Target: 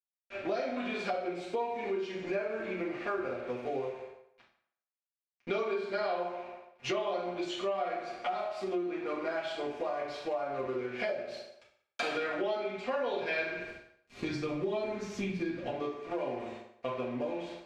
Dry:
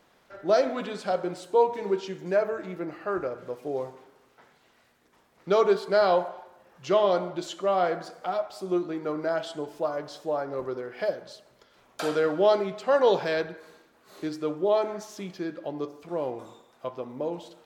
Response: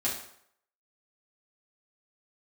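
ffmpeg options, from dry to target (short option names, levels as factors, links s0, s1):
-filter_complex "[0:a]aeval=exprs='sgn(val(0))*max(abs(val(0))-0.00355,0)':c=same,asettb=1/sr,asplit=3[s0][s1][s2];[s0]atrim=end=13.554[s3];[s1]atrim=start=13.55:end=15.68,asetpts=PTS-STARTPTS,afade=t=in:d=0.004:c=qsin,afade=t=out:st=2.126:d=0.004:c=qsin,bass=f=250:g=15,treble=f=4000:g=4[s4];[s2]atrim=start=15.676[s5];[s3][s4]acrossfade=d=0.004:c1=hsin:c2=qsin[s6];[s6][s5]acrossfade=d=0.004:c1=qsin:c2=hsin[s7];[1:a]atrim=start_sample=2205[s8];[s7][s8]afir=irnorm=-1:irlink=0,acompressor=threshold=0.0224:ratio=5,lowpass=5700,equalizer=f=2400:t=o:w=0.49:g=11.5"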